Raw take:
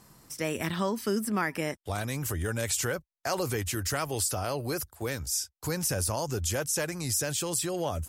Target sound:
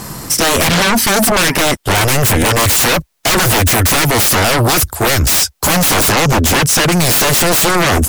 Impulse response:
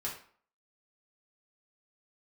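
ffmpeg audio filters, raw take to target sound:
-filter_complex "[0:a]asettb=1/sr,asplit=3[link_01][link_02][link_03];[link_01]atrim=end=6.144[link_04];[link_02]atrim=start=6.14:end=6.92,asetpts=PTS-STARTPTS,afade=type=in:duration=0.004:curve=qsin,afade=type=out:start_time=0.776:duration=0.004:curve=qsin,aemphasis=mode=reproduction:type=cd[link_05];[link_03]atrim=start=6.916[link_06];[link_04][link_05]acrossfade=duration=0.004:curve1=hsin:curve2=qsin[link_07];[link_07][link_06]acrossfade=duration=0.004:curve1=qsin:curve2=hsin,aeval=exprs='0.178*sin(PI/2*8.91*val(0)/0.178)':channel_layout=same,volume=6.5dB"

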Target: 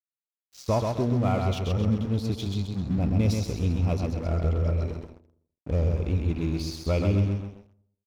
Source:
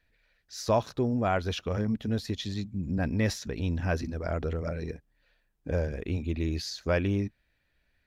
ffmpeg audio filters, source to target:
ffmpeg -i in.wav -filter_complex "[0:a]lowshelf=frequency=190:gain=9,asplit=2[link_01][link_02];[link_02]aecho=0:1:131|262|393|524|655:0.631|0.271|0.117|0.0502|0.0216[link_03];[link_01][link_03]amix=inputs=2:normalize=0,acontrast=89,asuperstop=centerf=1700:order=20:qfactor=2.7,aeval=exprs='sgn(val(0))*max(abs(val(0))-0.0237,0)':channel_layout=same,asplit=2[link_04][link_05];[link_05]adelay=82,lowpass=frequency=1500:poles=1,volume=-18dB,asplit=2[link_06][link_07];[link_07]adelay=82,lowpass=frequency=1500:poles=1,volume=0.54,asplit=2[link_08][link_09];[link_09]adelay=82,lowpass=frequency=1500:poles=1,volume=0.54,asplit=2[link_10][link_11];[link_11]adelay=82,lowpass=frequency=1500:poles=1,volume=0.54,asplit=2[link_12][link_13];[link_13]adelay=82,lowpass=frequency=1500:poles=1,volume=0.54[link_14];[link_06][link_08][link_10][link_12][link_14]amix=inputs=5:normalize=0[link_15];[link_04][link_15]amix=inputs=2:normalize=0,volume=-8dB" out.wav

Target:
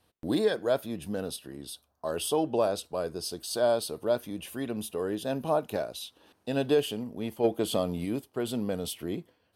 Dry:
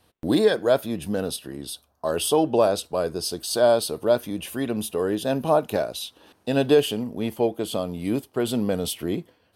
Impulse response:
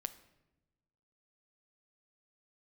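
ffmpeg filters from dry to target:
-filter_complex "[0:a]asplit=3[link_01][link_02][link_03];[link_01]afade=type=out:start_time=7.43:duration=0.02[link_04];[link_02]acontrast=58,afade=type=in:start_time=7.43:duration=0.02,afade=type=out:start_time=8.04:duration=0.02[link_05];[link_03]afade=type=in:start_time=8.04:duration=0.02[link_06];[link_04][link_05][link_06]amix=inputs=3:normalize=0,volume=-7dB"

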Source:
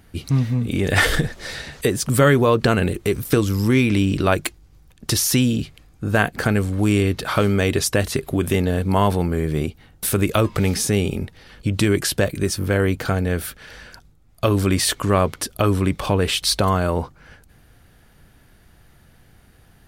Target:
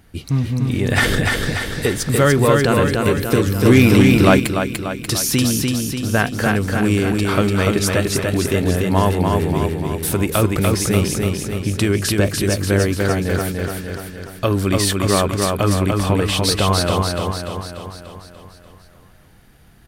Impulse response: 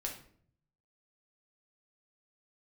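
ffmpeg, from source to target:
-filter_complex "[0:a]aecho=1:1:293|586|879|1172|1465|1758|2051|2344:0.708|0.404|0.23|0.131|0.0747|0.0426|0.0243|0.0138,asettb=1/sr,asplit=3[link_01][link_02][link_03];[link_01]atrim=end=3.654[link_04];[link_02]atrim=start=3.65:end=4.4,asetpts=PTS-STARTPTS,afade=type=in:duration=0.004:curve=qsin,afade=type=out:start_time=0.746:duration=0.004:curve=qsin,acontrast=61[link_05];[link_03]atrim=start=4.396[link_06];[link_04][link_05]acrossfade=duration=0.004:curve1=hsin:curve2=qsin[link_07];[link_07][link_06]acrossfade=duration=0.004:curve1=qsin:curve2=hsin"

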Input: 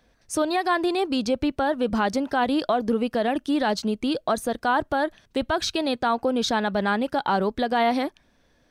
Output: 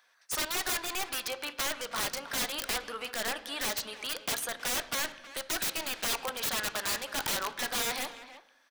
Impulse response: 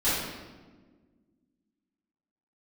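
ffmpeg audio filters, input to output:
-filter_complex "[0:a]highpass=frequency=1200:width_type=q:width=1.6,highshelf=frequency=6100:gain=5.5,aeval=exprs='(mod(15*val(0)+1,2)-1)/15':channel_layout=same,asplit=2[link_01][link_02];[link_02]adelay=320,highpass=300,lowpass=3400,asoftclip=type=hard:threshold=-33.5dB,volume=-11dB[link_03];[link_01][link_03]amix=inputs=2:normalize=0,asplit=2[link_04][link_05];[1:a]atrim=start_sample=2205,afade=type=out:start_time=0.39:duration=0.01,atrim=end_sample=17640,lowpass=5600[link_06];[link_05][link_06]afir=irnorm=-1:irlink=0,volume=-25dB[link_07];[link_04][link_07]amix=inputs=2:normalize=0,volume=-2dB"

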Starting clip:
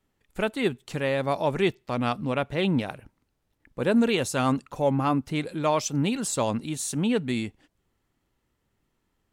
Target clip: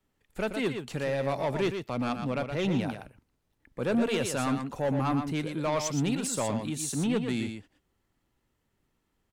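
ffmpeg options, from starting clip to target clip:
ffmpeg -i in.wav -filter_complex "[0:a]acrossover=split=130[link_01][link_02];[link_02]asoftclip=type=tanh:threshold=-20.5dB[link_03];[link_01][link_03]amix=inputs=2:normalize=0,aecho=1:1:119:0.447,volume=-2dB" out.wav

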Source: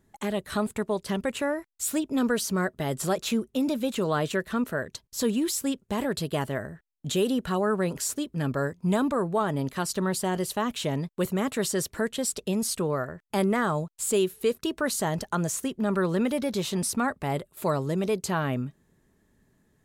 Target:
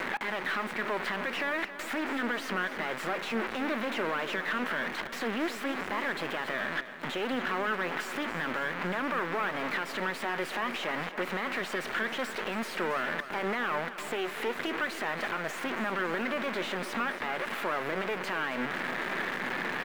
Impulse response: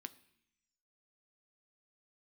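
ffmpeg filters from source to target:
-filter_complex "[0:a]aeval=exprs='val(0)+0.5*0.0376*sgn(val(0))':channel_layout=same,equalizer=frequency=2000:width=0.63:gain=15,acompressor=threshold=-25dB:ratio=6,alimiter=limit=-23dB:level=0:latency=1,acrusher=bits=4:dc=4:mix=0:aa=0.000001,acrossover=split=200 3600:gain=0.126 1 0.158[link_01][link_02][link_03];[link_01][link_02][link_03]amix=inputs=3:normalize=0,aecho=1:1:274|548|822|1096|1370|1644:0.237|0.138|0.0798|0.0463|0.0268|0.0156,asplit=2[link_04][link_05];[1:a]atrim=start_sample=2205,lowpass=2100[link_06];[link_05][link_06]afir=irnorm=-1:irlink=0,volume=-1.5dB[link_07];[link_04][link_07]amix=inputs=2:normalize=0,volume=3dB"

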